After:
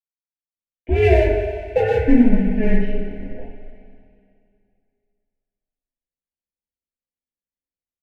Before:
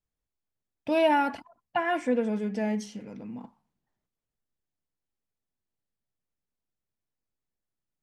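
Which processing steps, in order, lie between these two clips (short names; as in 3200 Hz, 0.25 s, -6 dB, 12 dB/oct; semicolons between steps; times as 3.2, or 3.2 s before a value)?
AGC gain up to 15 dB; on a send: feedback echo 61 ms, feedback 57%, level -7 dB; on the sum: power-law curve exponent 1.4; mistuned SSB -230 Hz 180–2800 Hz; in parallel at -4 dB: hard clip -12 dBFS, distortion -12 dB; on the sum: Butterworth band-stop 1200 Hz, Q 1.2; two-slope reverb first 0.24 s, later 2.5 s, from -17 dB, DRR -7 dB; gain -9.5 dB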